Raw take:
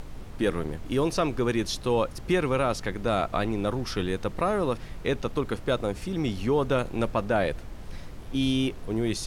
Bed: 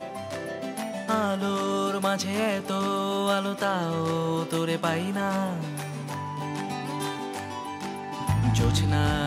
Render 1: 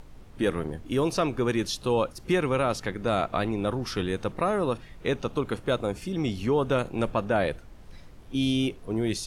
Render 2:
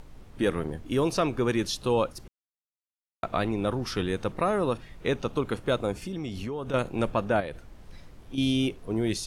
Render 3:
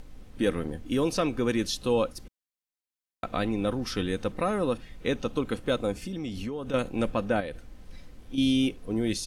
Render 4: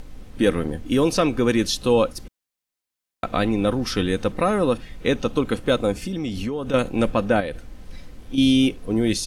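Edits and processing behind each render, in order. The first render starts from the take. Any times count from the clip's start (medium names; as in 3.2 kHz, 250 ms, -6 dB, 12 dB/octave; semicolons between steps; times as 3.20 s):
noise print and reduce 8 dB
2.28–3.23 s: mute; 5.94–6.74 s: compression, threshold -30 dBFS; 7.40–8.38 s: compression 4:1, threshold -32 dBFS
peaking EQ 960 Hz -4.5 dB 1.3 oct; comb 3.9 ms, depth 35%
trim +7 dB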